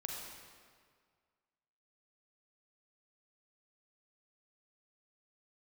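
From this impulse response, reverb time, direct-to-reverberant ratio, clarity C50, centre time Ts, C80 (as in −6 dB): 1.9 s, −1.0 dB, 0.0 dB, 91 ms, 2.0 dB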